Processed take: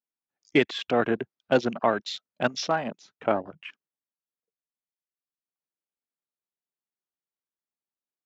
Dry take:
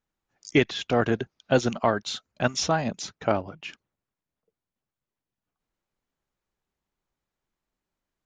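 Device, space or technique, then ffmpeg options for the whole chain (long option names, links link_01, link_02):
over-cleaned archive recording: -filter_complex "[0:a]asettb=1/sr,asplit=3[link_01][link_02][link_03];[link_01]atrim=end=2.574[link_04];[link_02]atrim=start=2.57:end=3.24,asetpts=PTS-STARTPTS,afade=type=in:duration=0.004:curve=qsin,afade=type=out:start_time=0.666:duration=0.004:curve=qsin,lowshelf=frequency=290:gain=-5.5[link_05];[link_03]atrim=start=3.236[link_06];[link_04][link_05]acrossfade=duration=0.004:curve1=hsin:curve2=qsin[link_07];[link_07][link_06]acrossfade=duration=0.004:curve1=qsin:curve2=hsin,highpass=190,lowpass=6000,afwtdn=0.0141"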